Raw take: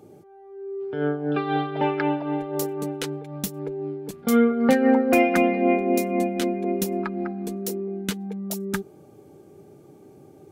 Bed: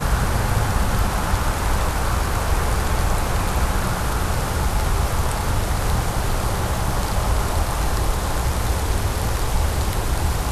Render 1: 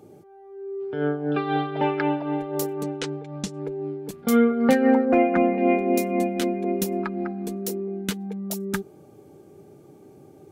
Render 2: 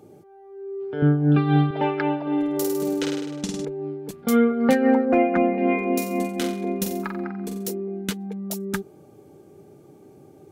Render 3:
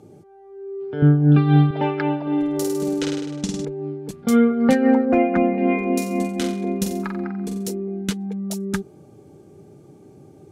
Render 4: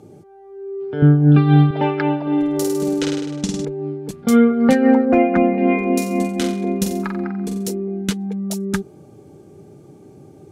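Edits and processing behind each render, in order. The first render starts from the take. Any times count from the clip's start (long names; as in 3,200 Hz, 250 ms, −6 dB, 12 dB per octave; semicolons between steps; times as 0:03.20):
0:02.83–0:03.63: low-pass filter 7,700 Hz 24 dB per octave; 0:05.05–0:05.58: low-pass filter 1,600 Hz
0:01.02–0:01.71: low shelf with overshoot 300 Hz +12 dB, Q 1.5; 0:02.22–0:03.65: flutter between parallel walls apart 8.8 metres, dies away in 1 s; 0:05.57–0:07.67: flutter between parallel walls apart 7.7 metres, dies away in 0.47 s
low-pass filter 10,000 Hz 12 dB per octave; bass and treble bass +6 dB, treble +3 dB
level +3 dB; brickwall limiter −3 dBFS, peak gain reduction 1 dB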